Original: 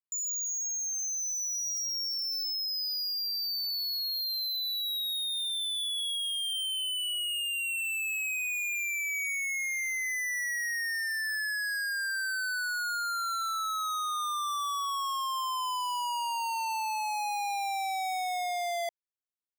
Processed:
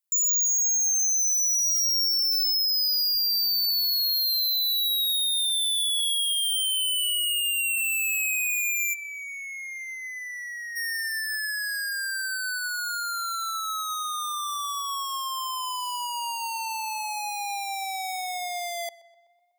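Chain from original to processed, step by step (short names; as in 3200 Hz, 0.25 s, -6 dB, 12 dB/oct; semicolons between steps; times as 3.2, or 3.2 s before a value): tilt +3.5 dB/oct, from 8.93 s -3.5 dB/oct, from 10.75 s +2 dB/oct; tape echo 0.124 s, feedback 64%, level -18.5 dB, low-pass 3500 Hz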